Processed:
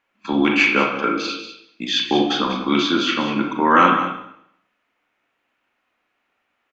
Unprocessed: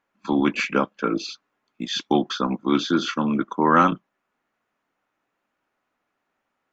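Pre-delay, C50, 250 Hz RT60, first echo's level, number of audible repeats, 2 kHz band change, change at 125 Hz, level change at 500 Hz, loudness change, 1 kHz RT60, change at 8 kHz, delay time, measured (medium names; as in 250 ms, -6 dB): 31 ms, 3.5 dB, 0.70 s, -11.0 dB, 1, +8.5 dB, -0.5 dB, +3.0 dB, +4.0 dB, 0.75 s, no reading, 193 ms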